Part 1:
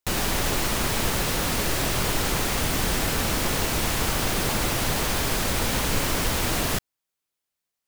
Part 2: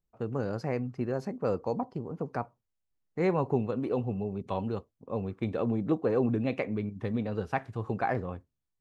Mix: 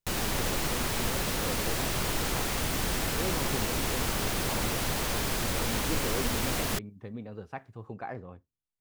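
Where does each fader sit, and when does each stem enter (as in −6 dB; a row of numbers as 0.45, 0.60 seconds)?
−5.5, −9.0 decibels; 0.00, 0.00 seconds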